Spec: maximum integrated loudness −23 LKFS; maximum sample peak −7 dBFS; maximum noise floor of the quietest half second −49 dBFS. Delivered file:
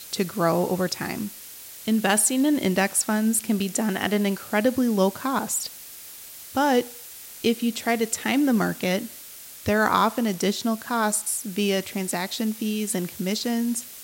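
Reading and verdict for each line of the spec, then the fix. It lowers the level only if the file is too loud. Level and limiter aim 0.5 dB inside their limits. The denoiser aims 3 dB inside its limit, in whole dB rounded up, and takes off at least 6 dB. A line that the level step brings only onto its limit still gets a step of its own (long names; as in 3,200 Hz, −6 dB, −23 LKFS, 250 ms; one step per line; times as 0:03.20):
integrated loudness −24.0 LKFS: in spec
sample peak −5.5 dBFS: out of spec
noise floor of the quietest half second −42 dBFS: out of spec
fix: broadband denoise 10 dB, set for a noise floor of −42 dBFS
brickwall limiter −7.5 dBFS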